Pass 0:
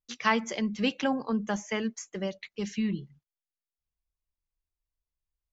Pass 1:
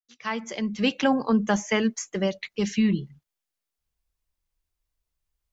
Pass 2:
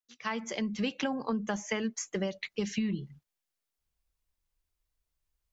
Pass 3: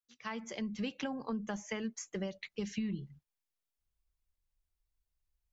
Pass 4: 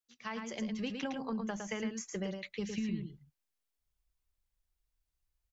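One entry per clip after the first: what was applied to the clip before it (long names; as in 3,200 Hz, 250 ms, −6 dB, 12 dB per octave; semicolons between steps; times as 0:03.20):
fade in at the beginning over 1.27 s; level +7.5 dB
downward compressor 6 to 1, threshold −27 dBFS, peak gain reduction 10.5 dB; level −1.5 dB
low-shelf EQ 130 Hz +7.5 dB; level −7 dB
single-tap delay 110 ms −5.5 dB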